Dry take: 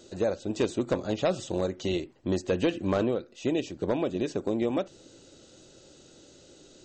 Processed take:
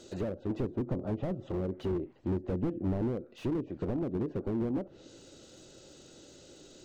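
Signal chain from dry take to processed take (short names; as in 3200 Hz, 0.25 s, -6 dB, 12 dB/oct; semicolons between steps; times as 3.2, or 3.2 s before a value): treble ducked by the level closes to 370 Hz, closed at -24 dBFS; slew limiter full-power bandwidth 12 Hz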